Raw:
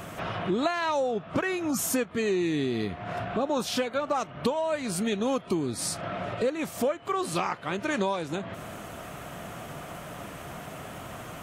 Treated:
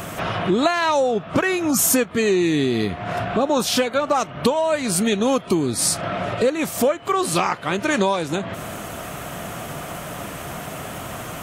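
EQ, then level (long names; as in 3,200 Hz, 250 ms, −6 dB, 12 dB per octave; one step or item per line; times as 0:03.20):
high-shelf EQ 5,600 Hz +5.5 dB
+8.0 dB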